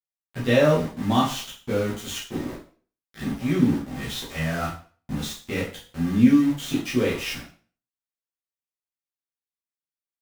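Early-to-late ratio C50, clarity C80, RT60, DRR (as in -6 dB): 6.0 dB, 11.5 dB, 0.40 s, -9.0 dB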